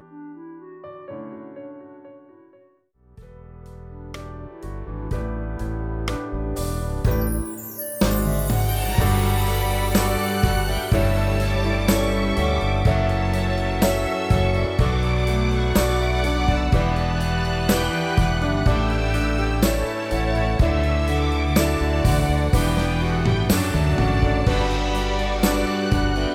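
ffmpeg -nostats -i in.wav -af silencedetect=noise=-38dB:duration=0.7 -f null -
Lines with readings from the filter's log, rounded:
silence_start: 2.17
silence_end: 3.18 | silence_duration: 1.00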